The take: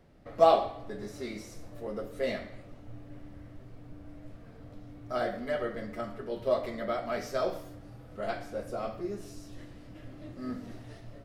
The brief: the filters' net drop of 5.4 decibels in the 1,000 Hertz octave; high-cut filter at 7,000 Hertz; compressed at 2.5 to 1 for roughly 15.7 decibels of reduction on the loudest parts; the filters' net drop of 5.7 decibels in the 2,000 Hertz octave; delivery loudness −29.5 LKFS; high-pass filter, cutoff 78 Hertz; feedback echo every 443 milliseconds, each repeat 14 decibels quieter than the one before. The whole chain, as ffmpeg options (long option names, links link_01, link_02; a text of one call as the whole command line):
ffmpeg -i in.wav -af "highpass=78,lowpass=7000,equalizer=frequency=1000:width_type=o:gain=-7.5,equalizer=frequency=2000:width_type=o:gain=-4.5,acompressor=threshold=-44dB:ratio=2.5,aecho=1:1:443|886:0.2|0.0399,volume=17dB" out.wav